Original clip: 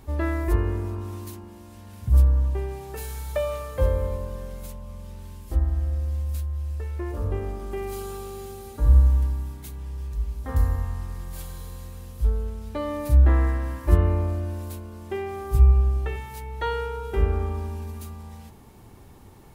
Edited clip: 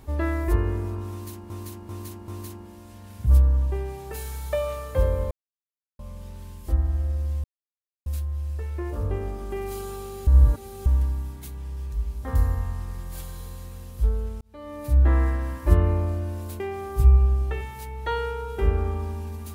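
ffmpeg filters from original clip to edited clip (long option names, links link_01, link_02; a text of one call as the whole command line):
ffmpeg -i in.wav -filter_complex "[0:a]asplit=11[link_01][link_02][link_03][link_04][link_05][link_06][link_07][link_08][link_09][link_10][link_11];[link_01]atrim=end=1.502[link_12];[link_02]atrim=start=1.108:end=1.502[link_13];[link_03]atrim=start=1.108:end=1.502[link_14];[link_04]atrim=start=1.108:end=4.14,asetpts=PTS-STARTPTS,afade=type=out:start_time=3.028:duration=0.004:curve=hsin[link_15];[link_05]atrim=start=4.14:end=4.82,asetpts=PTS-STARTPTS,volume=0[link_16];[link_06]atrim=start=4.82:end=6.27,asetpts=PTS-STARTPTS,afade=type=in:duration=0.004:curve=hsin,afade=type=out:start_time=1.446:duration=0.004:curve=hsin,apad=pad_dur=0.62[link_17];[link_07]atrim=start=6.27:end=8.482,asetpts=PTS-STARTPTS,afade=type=in:duration=0.004:curve=hsin[link_18];[link_08]atrim=start=8.478:end=9.072,asetpts=PTS-STARTPTS,areverse[link_19];[link_09]atrim=start=9.068:end=12.62,asetpts=PTS-STARTPTS,afade=type=out:start_time=3.548:duration=0.004:curve=hsin[link_20];[link_10]atrim=start=12.62:end=14.812,asetpts=PTS-STARTPTS,afade=type=in:duration=0.76[link_21];[link_11]atrim=start=15.148[link_22];[link_12][link_13]acrossfade=duration=0.004:curve1=hsin:curve2=hsin[link_23];[link_23][link_14]acrossfade=duration=0.004:curve1=hsin:curve2=hsin[link_24];[link_15][link_16][link_17][link_18]concat=n=4:v=0:a=1[link_25];[link_24][link_25]acrossfade=duration=0.004:curve1=hsin:curve2=hsin[link_26];[link_26][link_19]acrossfade=duration=0.004:curve1=hsin:curve2=hsin[link_27];[link_20][link_21]concat=n=2:v=0:a=1[link_28];[link_27][link_28]acrossfade=duration=0.004:curve1=hsin:curve2=hsin[link_29];[link_29][link_22]acrossfade=duration=0.004:curve1=hsin:curve2=hsin" out.wav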